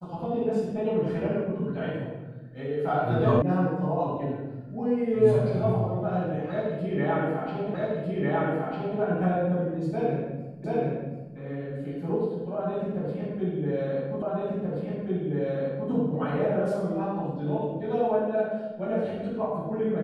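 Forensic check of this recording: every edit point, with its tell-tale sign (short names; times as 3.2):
3.42 sound cut off
7.74 repeat of the last 1.25 s
10.64 repeat of the last 0.73 s
14.22 repeat of the last 1.68 s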